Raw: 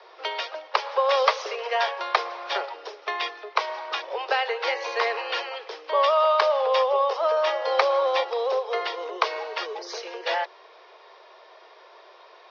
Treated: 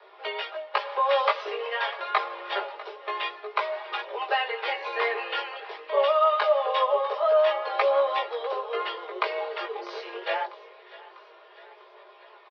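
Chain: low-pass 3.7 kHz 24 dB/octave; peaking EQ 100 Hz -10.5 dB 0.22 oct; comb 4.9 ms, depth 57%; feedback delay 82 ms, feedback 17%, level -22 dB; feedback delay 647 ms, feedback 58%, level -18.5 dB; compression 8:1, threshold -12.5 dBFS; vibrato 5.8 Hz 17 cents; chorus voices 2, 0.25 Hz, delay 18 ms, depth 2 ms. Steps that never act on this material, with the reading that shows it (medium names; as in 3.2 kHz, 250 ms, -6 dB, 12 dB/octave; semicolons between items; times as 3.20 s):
peaking EQ 100 Hz: input has nothing below 340 Hz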